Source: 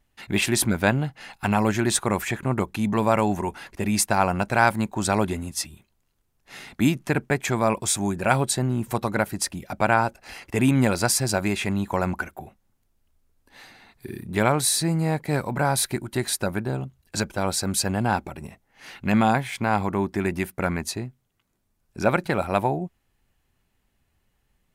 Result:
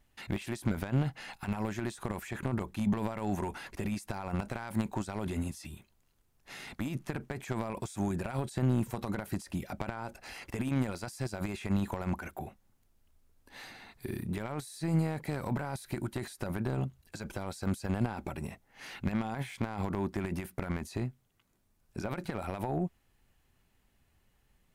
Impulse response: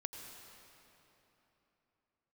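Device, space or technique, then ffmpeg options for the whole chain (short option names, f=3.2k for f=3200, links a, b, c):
de-esser from a sidechain: -filter_complex "[0:a]asplit=2[a][b];[b]highpass=f=4.1k:p=1,apad=whole_len=1091456[c];[a][c]sidechaincompress=threshold=-46dB:ratio=12:attack=0.91:release=25"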